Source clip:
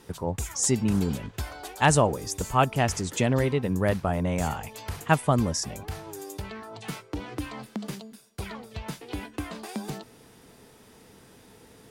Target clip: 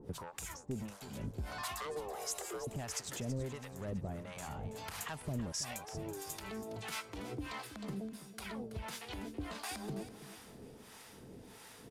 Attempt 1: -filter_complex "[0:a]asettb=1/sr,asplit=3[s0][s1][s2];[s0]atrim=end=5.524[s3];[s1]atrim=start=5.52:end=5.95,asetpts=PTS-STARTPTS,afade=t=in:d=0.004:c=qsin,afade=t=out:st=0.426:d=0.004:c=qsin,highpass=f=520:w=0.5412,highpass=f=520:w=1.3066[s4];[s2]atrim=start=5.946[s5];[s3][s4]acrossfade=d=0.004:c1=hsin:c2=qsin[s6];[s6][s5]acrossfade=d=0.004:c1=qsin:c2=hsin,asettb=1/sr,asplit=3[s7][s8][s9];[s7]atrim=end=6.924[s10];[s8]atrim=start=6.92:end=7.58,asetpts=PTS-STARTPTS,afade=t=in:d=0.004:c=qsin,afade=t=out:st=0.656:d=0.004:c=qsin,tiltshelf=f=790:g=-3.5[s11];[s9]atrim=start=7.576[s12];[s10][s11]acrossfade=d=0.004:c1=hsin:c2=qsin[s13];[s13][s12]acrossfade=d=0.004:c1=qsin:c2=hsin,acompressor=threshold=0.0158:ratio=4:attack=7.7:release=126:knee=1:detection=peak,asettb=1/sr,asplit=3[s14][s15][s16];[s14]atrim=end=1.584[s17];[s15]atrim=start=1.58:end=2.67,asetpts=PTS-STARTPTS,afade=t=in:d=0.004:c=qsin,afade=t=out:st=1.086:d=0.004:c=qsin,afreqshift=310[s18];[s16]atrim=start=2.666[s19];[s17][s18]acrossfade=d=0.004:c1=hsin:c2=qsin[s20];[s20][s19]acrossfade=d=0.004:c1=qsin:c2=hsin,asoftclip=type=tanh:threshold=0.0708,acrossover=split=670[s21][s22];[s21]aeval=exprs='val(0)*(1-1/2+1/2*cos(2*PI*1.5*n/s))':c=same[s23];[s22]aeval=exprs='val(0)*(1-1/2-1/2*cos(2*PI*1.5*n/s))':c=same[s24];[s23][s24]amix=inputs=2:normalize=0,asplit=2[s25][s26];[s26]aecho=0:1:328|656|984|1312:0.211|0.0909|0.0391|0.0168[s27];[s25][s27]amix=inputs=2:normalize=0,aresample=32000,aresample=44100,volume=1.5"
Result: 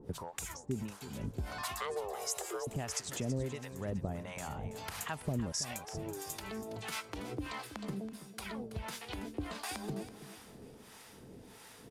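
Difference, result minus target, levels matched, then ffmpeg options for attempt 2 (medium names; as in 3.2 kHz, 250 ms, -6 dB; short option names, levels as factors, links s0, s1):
saturation: distortion -14 dB
-filter_complex "[0:a]asettb=1/sr,asplit=3[s0][s1][s2];[s0]atrim=end=5.524[s3];[s1]atrim=start=5.52:end=5.95,asetpts=PTS-STARTPTS,afade=t=in:d=0.004:c=qsin,afade=t=out:st=0.426:d=0.004:c=qsin,highpass=f=520:w=0.5412,highpass=f=520:w=1.3066[s4];[s2]atrim=start=5.946[s5];[s3][s4]acrossfade=d=0.004:c1=hsin:c2=qsin[s6];[s6][s5]acrossfade=d=0.004:c1=qsin:c2=hsin,asettb=1/sr,asplit=3[s7][s8][s9];[s7]atrim=end=6.924[s10];[s8]atrim=start=6.92:end=7.58,asetpts=PTS-STARTPTS,afade=t=in:d=0.004:c=qsin,afade=t=out:st=0.656:d=0.004:c=qsin,tiltshelf=f=790:g=-3.5[s11];[s9]atrim=start=7.576[s12];[s10][s11]acrossfade=d=0.004:c1=hsin:c2=qsin[s13];[s13][s12]acrossfade=d=0.004:c1=qsin:c2=hsin,acompressor=threshold=0.0158:ratio=4:attack=7.7:release=126:knee=1:detection=peak,asettb=1/sr,asplit=3[s14][s15][s16];[s14]atrim=end=1.584[s17];[s15]atrim=start=1.58:end=2.67,asetpts=PTS-STARTPTS,afade=t=in:d=0.004:c=qsin,afade=t=out:st=1.086:d=0.004:c=qsin,afreqshift=310[s18];[s16]atrim=start=2.666[s19];[s17][s18]acrossfade=d=0.004:c1=hsin:c2=qsin[s20];[s20][s19]acrossfade=d=0.004:c1=qsin:c2=hsin,asoftclip=type=tanh:threshold=0.0188,acrossover=split=670[s21][s22];[s21]aeval=exprs='val(0)*(1-1/2+1/2*cos(2*PI*1.5*n/s))':c=same[s23];[s22]aeval=exprs='val(0)*(1-1/2-1/2*cos(2*PI*1.5*n/s))':c=same[s24];[s23][s24]amix=inputs=2:normalize=0,asplit=2[s25][s26];[s26]aecho=0:1:328|656|984|1312:0.211|0.0909|0.0391|0.0168[s27];[s25][s27]amix=inputs=2:normalize=0,aresample=32000,aresample=44100,volume=1.5"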